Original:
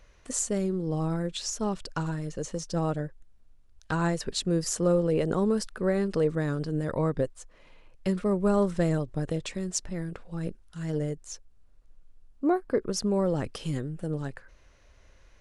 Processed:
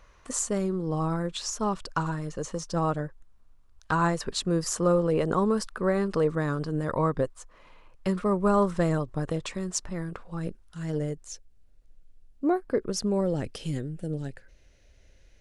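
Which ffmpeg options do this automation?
ffmpeg -i in.wav -af "asetnsamples=nb_out_samples=441:pad=0,asendcmd='10.4 equalizer g 2;11.28 equalizer g -8;12.44 equalizer g -1;13.21 equalizer g -7.5;14 equalizer g -14.5',equalizer=frequency=1100:width_type=o:width=0.76:gain=9" out.wav

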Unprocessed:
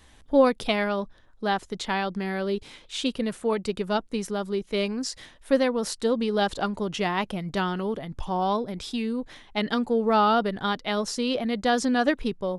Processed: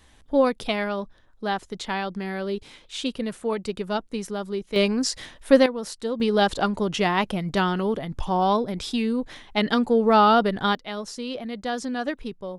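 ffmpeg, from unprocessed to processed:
ffmpeg -i in.wav -af "asetnsamples=nb_out_samples=441:pad=0,asendcmd='4.76 volume volume 6dB;5.66 volume volume -4dB;6.2 volume volume 4dB;10.75 volume volume -5.5dB',volume=-1dB" out.wav

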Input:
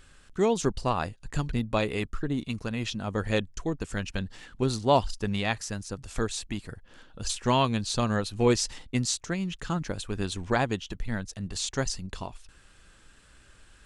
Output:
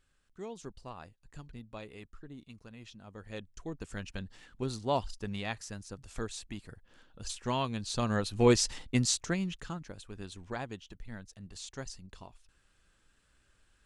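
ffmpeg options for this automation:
ffmpeg -i in.wav -af "volume=-0.5dB,afade=type=in:start_time=3.27:duration=0.57:silence=0.316228,afade=type=in:start_time=7.75:duration=0.74:silence=0.398107,afade=type=out:start_time=9.28:duration=0.52:silence=0.237137" out.wav

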